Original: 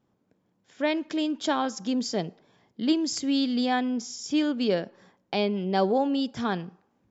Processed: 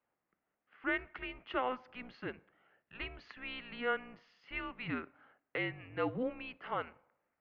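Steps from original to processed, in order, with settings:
sub-octave generator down 2 octaves, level +1 dB
wrong playback speed 25 fps video run at 24 fps
first difference
single-sideband voice off tune −250 Hz 410–2,400 Hz
level +11 dB

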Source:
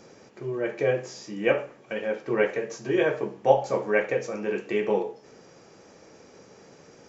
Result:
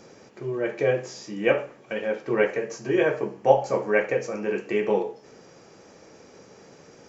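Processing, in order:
0:02.44–0:04.87: parametric band 3,600 Hz −8 dB 0.22 octaves
level +1.5 dB

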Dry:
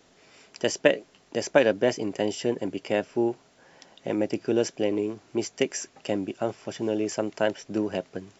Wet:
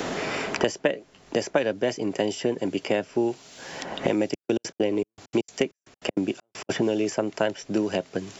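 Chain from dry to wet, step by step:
0:04.24–0:06.69: gate pattern "xxx..x.x." 197 BPM −60 dB
multiband upward and downward compressor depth 100%
level +1 dB

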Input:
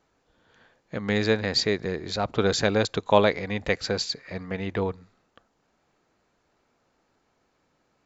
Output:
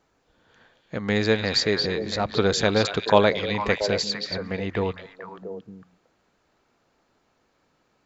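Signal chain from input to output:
echo through a band-pass that steps 227 ms, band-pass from 3,400 Hz, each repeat −1.4 octaves, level −2 dB
level +1.5 dB

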